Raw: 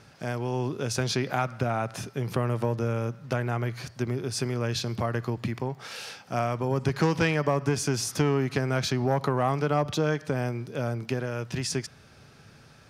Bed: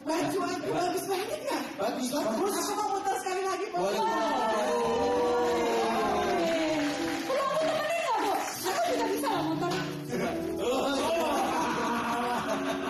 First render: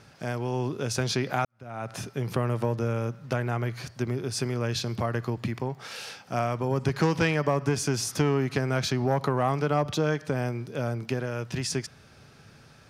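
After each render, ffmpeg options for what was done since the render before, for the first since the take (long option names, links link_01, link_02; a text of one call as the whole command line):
ffmpeg -i in.wav -filter_complex "[0:a]asplit=2[link_01][link_02];[link_01]atrim=end=1.45,asetpts=PTS-STARTPTS,afade=type=out:start_time=1.446:duration=0.004:curve=hsin[link_03];[link_02]atrim=start=1.45,asetpts=PTS-STARTPTS,afade=type=in:duration=0.5:curve=qua[link_04];[link_03][link_04]concat=n=2:v=0:a=1" out.wav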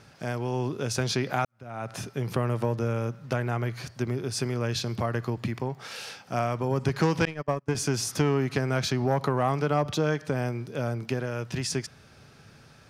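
ffmpeg -i in.wav -filter_complex "[0:a]asettb=1/sr,asplit=3[link_01][link_02][link_03];[link_01]atrim=end=7.254[link_04];[link_02]atrim=start=7.25:end=7.75,asetpts=PTS-STARTPTS,afade=type=in:duration=0.004:curve=qsin,afade=type=out:start_time=0.496:duration=0.004:curve=qsin,agate=range=-32dB:threshold=-24dB:ratio=16:release=100:detection=peak[link_05];[link_03]atrim=start=7.746[link_06];[link_04][link_05]acrossfade=duration=0.004:curve1=hsin:curve2=qsin[link_07];[link_07][link_06]acrossfade=duration=0.004:curve1=qsin:curve2=hsin" out.wav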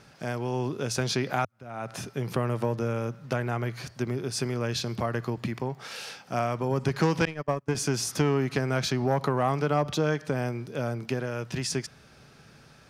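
ffmpeg -i in.wav -af "equalizer=frequency=100:width=5.8:gain=-9.5" out.wav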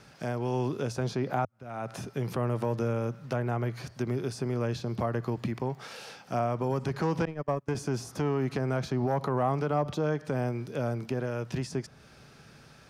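ffmpeg -i in.wav -filter_complex "[0:a]acrossover=split=730|1100[link_01][link_02][link_03];[link_01]alimiter=limit=-21dB:level=0:latency=1[link_04];[link_03]acompressor=threshold=-45dB:ratio=4[link_05];[link_04][link_02][link_05]amix=inputs=3:normalize=0" out.wav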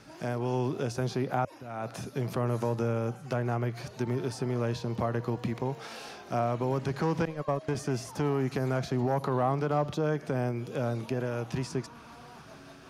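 ffmpeg -i in.wav -i bed.wav -filter_complex "[1:a]volume=-21dB[link_01];[0:a][link_01]amix=inputs=2:normalize=0" out.wav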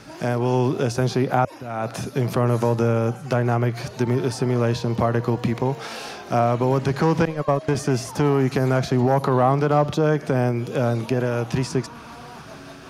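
ffmpeg -i in.wav -af "volume=9.5dB" out.wav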